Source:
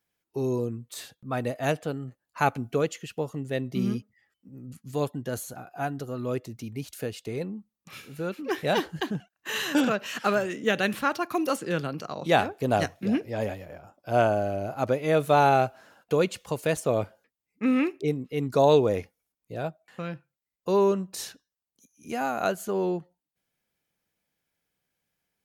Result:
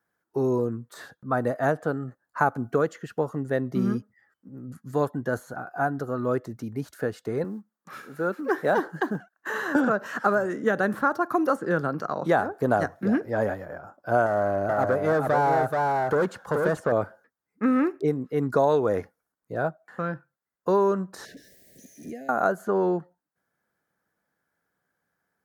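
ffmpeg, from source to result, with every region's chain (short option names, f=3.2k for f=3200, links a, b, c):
-filter_complex "[0:a]asettb=1/sr,asplit=3[a][b][c];[a]atrim=end=7.444[d];[b]atrim=start=7.44:end=9.76,asetpts=PTS-STARTPTS,afade=t=in:d=0.004:c=qsin,afade=t=out:st=2.316:d=0.004:c=qsin,highpass=190,acrusher=bits=8:mode=log:mix=0:aa=0.000001[e];[c]atrim=start=9.756[f];[d][e]acrossfade=d=0.004:c1=hsin:c2=qsin[g];[g][f]acrossfade=d=0.004:c1=qsin:c2=hsin,asettb=1/sr,asplit=3[h][i][j];[h]atrim=end=14.264[k];[i]atrim=start=14.26:end=16.92,asetpts=PTS-STARTPTS,afade=t=in:d=0.004:c=qsin,afade=t=out:st=2.656:d=0.004:c=qsin,volume=23dB,asoftclip=hard,volume=-23dB,aecho=1:1:430:0.596,atrim=end_sample=117306[l];[j]atrim=start=16.916[m];[k][l]acrossfade=d=0.004:c1=hsin:c2=qsin[n];[n][m]acrossfade=d=0.004:c1=qsin:c2=hsin,asettb=1/sr,asplit=3[o][p][q];[o]atrim=end=21.254[r];[p]atrim=start=21.25:end=22.29,asetpts=PTS-STARTPTS,afade=t=in:d=0.004:c=qsin,afade=t=out:st=1.036:d=0.004:c=qsin,aeval=exprs='val(0)+0.5*0.00631*sgn(val(0))':c=same,acompressor=threshold=-36dB:ratio=10:attack=3.2:release=140:knee=1:detection=peak,asuperstop=centerf=1100:order=12:qfactor=0.95[s];[q]atrim=start=22.286[t];[r][s]acrossfade=d=0.004:c1=hsin:c2=qsin[u];[u][t]acrossfade=d=0.004:c1=qsin:c2=hsin,highpass=f=140:p=1,highshelf=f=2k:t=q:w=3:g=-8.5,acrossover=split=1200|4900[v][w][x];[v]acompressor=threshold=-24dB:ratio=4[y];[w]acompressor=threshold=-39dB:ratio=4[z];[x]acompressor=threshold=-57dB:ratio=4[aa];[y][z][aa]amix=inputs=3:normalize=0,volume=5dB"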